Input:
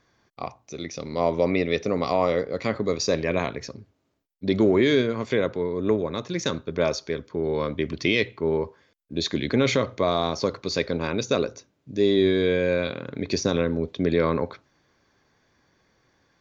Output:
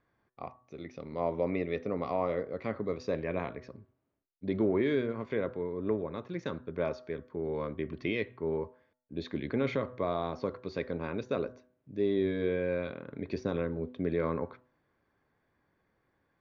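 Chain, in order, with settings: low-pass 2.1 kHz 12 dB/octave; de-hum 125.2 Hz, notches 15; trim -8.5 dB

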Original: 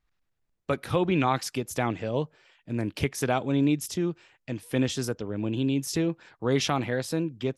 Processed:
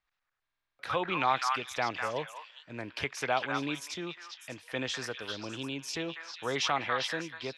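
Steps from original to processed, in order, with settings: three-band isolator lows -15 dB, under 580 Hz, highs -17 dB, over 6.1 kHz; on a send: repeats whose band climbs or falls 200 ms, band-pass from 1.4 kHz, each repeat 1.4 oct, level 0 dB; on the sum: buffer glitch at 0.42 s, samples 2048, times 7

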